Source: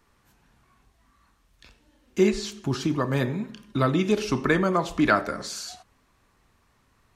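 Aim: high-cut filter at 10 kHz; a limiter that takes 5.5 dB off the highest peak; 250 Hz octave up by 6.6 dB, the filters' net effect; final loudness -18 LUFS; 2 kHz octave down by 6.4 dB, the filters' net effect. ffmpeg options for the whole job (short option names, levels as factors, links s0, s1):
-af "lowpass=10000,equalizer=f=250:t=o:g=9,equalizer=f=2000:t=o:g=-9,volume=1.78,alimiter=limit=0.501:level=0:latency=1"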